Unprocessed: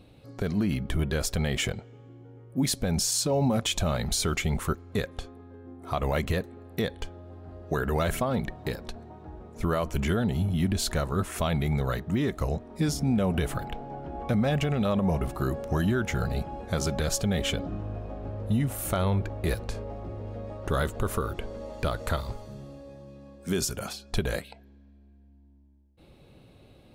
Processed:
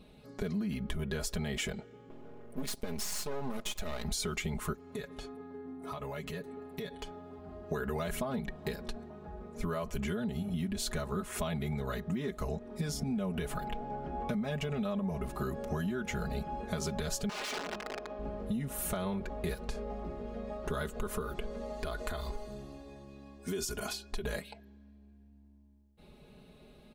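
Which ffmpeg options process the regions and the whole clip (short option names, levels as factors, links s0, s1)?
-filter_complex "[0:a]asettb=1/sr,asplit=3[s0][s1][s2];[s0]atrim=end=2.104[s3];[s1]atrim=start=2.1:end=4.05,asetpts=PTS-STARTPTS,afade=t=in:d=0.004:c=qsin,afade=t=out:st=1.946:d=0.004:c=qsin,equalizer=f=160:t=o:w=0.8:g=-7,acompressor=mode=upward:threshold=0.0178:ratio=2.5:attack=3.2:release=140:knee=2.83:detection=peak,aeval=exprs='max(val(0),0)':c=same[s4];[s2]atrim=start=4.046[s5];[s3][s4]acrossfade=d=0.004:c1=hsin:c2=qsin[s6];[s6][s5]acrossfade=d=0.004:c1=qsin:c2=hsin,asettb=1/sr,asplit=3[s7][s8][s9];[s7]atrim=end=4.744[s10];[s8]atrim=start=4.74:end=7.39,asetpts=PTS-STARTPTS,afade=t=in:d=0.004:c=qsin,afade=t=out:st=2.646:d=0.004:c=qsin,highpass=42,aecho=1:1:7.1:0.55,atrim=end_sample=116865,acompressor=threshold=0.0178:ratio=6:attack=3.2:release=140:knee=1:detection=peak[s11];[s9]atrim=start=7.386[s12];[s10][s11]acrossfade=d=0.004:c1=hsin:c2=qsin[s13];[s13][s12]acrossfade=d=0.004:c1=qsin:c2=hsin,asettb=1/sr,asplit=3[s14][s15][s16];[s14]atrim=end=17.294[s17];[s15]atrim=start=17.29:end=18.19,asetpts=PTS-STARTPTS,afade=t=in:d=0.004:c=qsin,afade=t=out:st=0.896:d=0.004:c=qsin,aeval=exprs='(mod(22.4*val(0)+1,2)-1)/22.4':c=same,acrossover=split=270 6900:gain=0.141 1 0.141[s18][s19][s20];[s18][s19][s20]amix=inputs=3:normalize=0[s21];[s16]atrim=start=18.186[s22];[s17][s21]acrossfade=d=0.004:c1=hsin:c2=qsin[s23];[s23][s22]acrossfade=d=0.004:c1=qsin:c2=hsin,asettb=1/sr,asplit=3[s24][s25][s26];[s24]atrim=end=21.764[s27];[s25]atrim=start=21.76:end=24.24,asetpts=PTS-STARTPTS,afade=t=in:d=0.004:c=qsin,afade=t=out:st=2.476:d=0.004:c=qsin,aecho=1:1:2.8:0.48,atrim=end_sample=109368,acompressor=threshold=0.0355:ratio=4:attack=3.2:release=140:knee=1:detection=peak[s28];[s26]atrim=start=24.236[s29];[s27][s28]acrossfade=d=0.004:c1=hsin:c2=qsin[s30];[s30][s29]acrossfade=d=0.004:c1=qsin:c2=hsin,aecho=1:1:4.8:0.86,acompressor=threshold=0.0398:ratio=6,volume=0.668"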